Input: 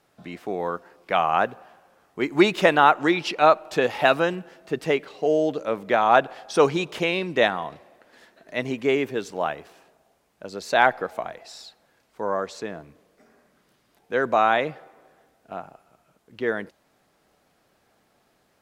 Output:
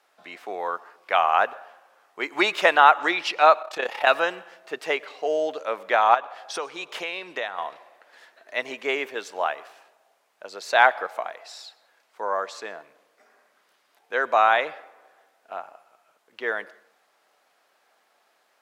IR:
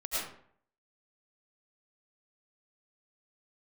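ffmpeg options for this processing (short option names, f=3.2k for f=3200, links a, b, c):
-filter_complex "[0:a]asettb=1/sr,asplit=3[a][b][c];[a]atrim=end=6.144[d];[b]atrim=start=6.14:end=7.58,asetpts=PTS-STARTPTS,afade=t=in:d=0.004:c=qsin,afade=t=out:st=1.436:d=0.004:c=qsin,acompressor=threshold=-26dB:ratio=6[e];[c]atrim=start=7.576[f];[d][e]acrossfade=d=0.004:c1=hsin:c2=qsin[g];[g][f]acrossfade=d=0.004:c1=qsin:c2=hsin,highpass=700,highshelf=f=4.5k:g=-5,asplit=2[h][i];[1:a]atrim=start_sample=2205,asetrate=39690,aresample=44100[j];[i][j]afir=irnorm=-1:irlink=0,volume=-27dB[k];[h][k]amix=inputs=2:normalize=0,asettb=1/sr,asplit=3[l][m][n];[l]atrim=end=3.624[o];[m]atrim=start=3.62:end=4.07,asetpts=PTS-STARTPTS,afade=t=in:d=0.004:c=qsin,afade=t=out:st=0.446:d=0.004:c=qsin,tremolo=f=33:d=0.75[p];[n]atrim=start=4.066[q];[o][p]acrossfade=d=0.004:c1=hsin:c2=qsin[r];[r][q]acrossfade=d=0.004:c1=qsin:c2=hsin,volume=3dB"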